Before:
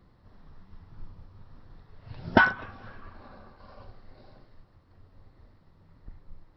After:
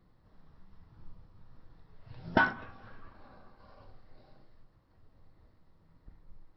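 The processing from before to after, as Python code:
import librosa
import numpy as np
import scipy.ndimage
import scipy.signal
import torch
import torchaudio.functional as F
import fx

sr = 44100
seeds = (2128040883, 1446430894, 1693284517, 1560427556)

y = fx.room_shoebox(x, sr, seeds[0], volume_m3=170.0, walls='furnished', distance_m=0.58)
y = y * librosa.db_to_amplitude(-7.0)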